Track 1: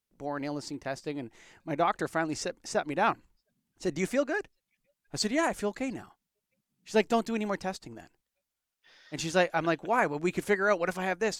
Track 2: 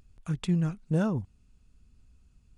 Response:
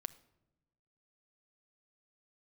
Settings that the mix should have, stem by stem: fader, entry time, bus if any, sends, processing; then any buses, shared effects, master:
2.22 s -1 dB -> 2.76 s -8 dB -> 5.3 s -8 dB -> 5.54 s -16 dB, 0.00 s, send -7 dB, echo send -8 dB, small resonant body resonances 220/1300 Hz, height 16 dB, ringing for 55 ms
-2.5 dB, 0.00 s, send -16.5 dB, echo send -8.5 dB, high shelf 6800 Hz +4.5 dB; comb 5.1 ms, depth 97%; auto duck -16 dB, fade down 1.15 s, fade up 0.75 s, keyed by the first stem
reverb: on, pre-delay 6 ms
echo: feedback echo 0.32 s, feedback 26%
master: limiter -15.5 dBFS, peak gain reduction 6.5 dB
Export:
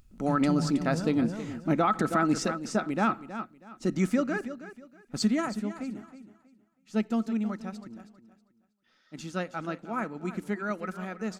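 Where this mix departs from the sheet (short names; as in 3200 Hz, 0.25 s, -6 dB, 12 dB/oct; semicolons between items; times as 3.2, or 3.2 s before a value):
stem 2: missing comb 5.1 ms, depth 97%; reverb return +8.5 dB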